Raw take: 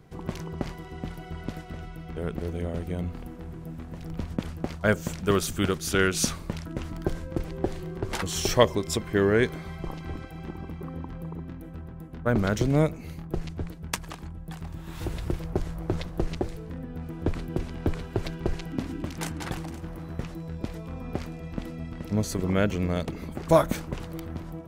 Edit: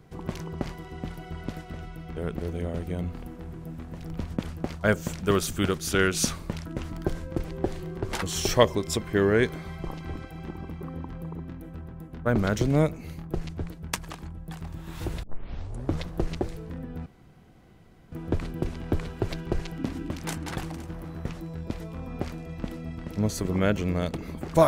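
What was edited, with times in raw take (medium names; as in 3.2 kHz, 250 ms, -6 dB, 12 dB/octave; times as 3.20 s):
15.23 s: tape start 0.76 s
17.06 s: insert room tone 1.06 s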